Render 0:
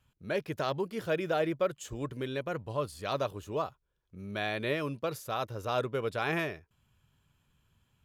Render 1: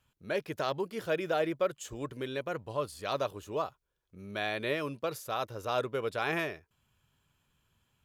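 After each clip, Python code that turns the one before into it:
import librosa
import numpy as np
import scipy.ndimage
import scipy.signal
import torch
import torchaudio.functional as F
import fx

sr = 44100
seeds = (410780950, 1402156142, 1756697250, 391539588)

y = fx.bass_treble(x, sr, bass_db=-5, treble_db=1)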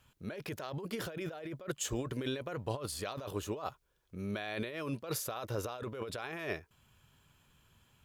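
y = fx.over_compress(x, sr, threshold_db=-40.0, ratio=-1.0)
y = F.gain(torch.from_numpy(y), 1.0).numpy()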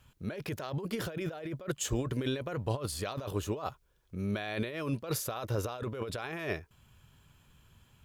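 y = fx.low_shelf(x, sr, hz=170.0, db=6.5)
y = F.gain(torch.from_numpy(y), 2.0).numpy()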